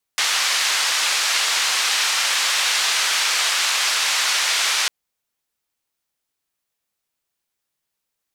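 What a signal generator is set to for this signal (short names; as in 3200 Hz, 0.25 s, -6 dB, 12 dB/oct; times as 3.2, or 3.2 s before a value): noise band 1100–5500 Hz, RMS -20 dBFS 4.70 s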